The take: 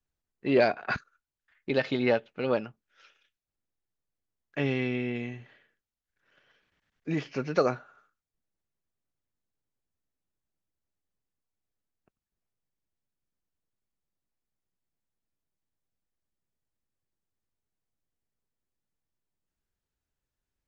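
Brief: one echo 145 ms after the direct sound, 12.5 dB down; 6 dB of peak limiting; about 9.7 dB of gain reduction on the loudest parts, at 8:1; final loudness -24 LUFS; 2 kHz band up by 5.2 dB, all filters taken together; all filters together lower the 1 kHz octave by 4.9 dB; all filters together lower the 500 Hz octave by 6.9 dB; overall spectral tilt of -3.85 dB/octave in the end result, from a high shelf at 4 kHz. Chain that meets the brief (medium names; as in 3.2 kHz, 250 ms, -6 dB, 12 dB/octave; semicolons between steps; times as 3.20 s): peaking EQ 500 Hz -7 dB; peaking EQ 1 kHz -8.5 dB; peaking EQ 2 kHz +7.5 dB; treble shelf 4 kHz +8 dB; compression 8:1, threshold -30 dBFS; peak limiter -24 dBFS; delay 145 ms -12.5 dB; trim +14 dB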